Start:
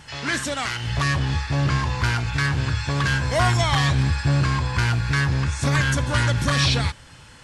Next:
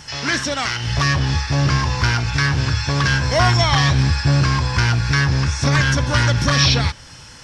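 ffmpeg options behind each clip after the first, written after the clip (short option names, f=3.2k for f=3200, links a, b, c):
-filter_complex "[0:a]equalizer=f=5.5k:w=3.6:g=13,acrossover=split=5100[a][b];[b]acompressor=threshold=-40dB:ratio=6[c];[a][c]amix=inputs=2:normalize=0,volume=4dB"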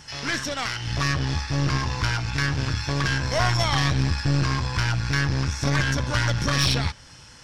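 -af "tremolo=f=190:d=0.261,aeval=exprs='(tanh(3.55*val(0)+0.65)-tanh(0.65))/3.55':c=same,volume=-2dB"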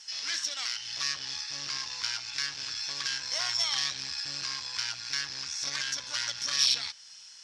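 -af "bandpass=f=5.2k:t=q:w=1.4:csg=0,volume=1.5dB"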